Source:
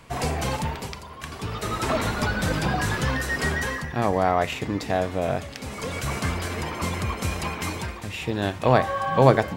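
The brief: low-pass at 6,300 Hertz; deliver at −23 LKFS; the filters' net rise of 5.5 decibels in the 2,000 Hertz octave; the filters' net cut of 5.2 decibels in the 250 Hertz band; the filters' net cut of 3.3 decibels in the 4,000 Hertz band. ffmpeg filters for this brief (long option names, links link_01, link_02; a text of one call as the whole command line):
ffmpeg -i in.wav -af "lowpass=6300,equalizer=frequency=250:width_type=o:gain=-7.5,equalizer=frequency=2000:width_type=o:gain=8.5,equalizer=frequency=4000:width_type=o:gain=-7.5,volume=1.5dB" out.wav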